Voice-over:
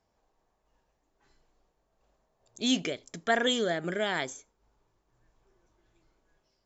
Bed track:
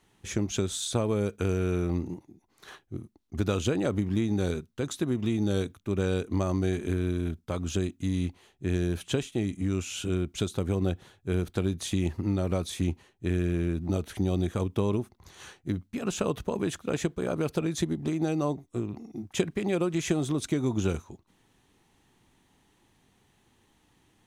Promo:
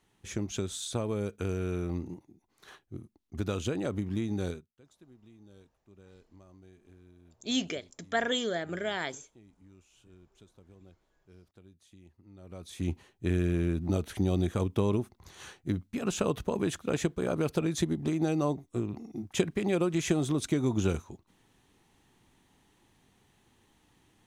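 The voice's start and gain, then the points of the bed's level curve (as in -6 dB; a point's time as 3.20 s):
4.85 s, -3.0 dB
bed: 4.49 s -5 dB
4.77 s -28.5 dB
12.27 s -28.5 dB
12.94 s -0.5 dB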